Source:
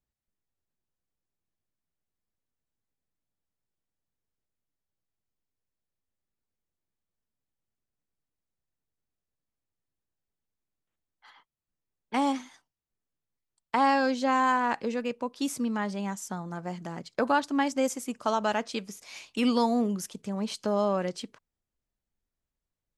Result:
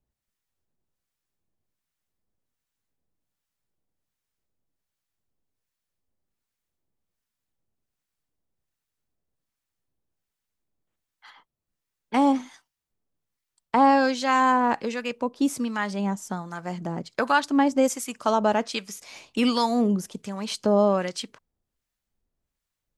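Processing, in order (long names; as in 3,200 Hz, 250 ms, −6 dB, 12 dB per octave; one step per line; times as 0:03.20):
two-band tremolo in antiphase 1.3 Hz, depth 70%, crossover 960 Hz
level +8 dB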